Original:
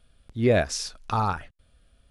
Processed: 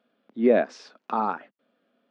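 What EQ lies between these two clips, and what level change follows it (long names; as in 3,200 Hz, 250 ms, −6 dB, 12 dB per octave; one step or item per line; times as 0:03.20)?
elliptic high-pass filter 220 Hz, stop band 80 dB
head-to-tape spacing loss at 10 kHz 37 dB
+4.0 dB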